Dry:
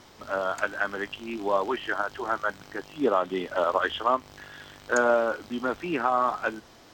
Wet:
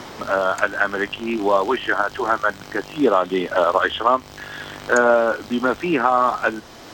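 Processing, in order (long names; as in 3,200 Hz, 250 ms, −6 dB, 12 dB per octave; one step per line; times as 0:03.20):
multiband upward and downward compressor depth 40%
level +7.5 dB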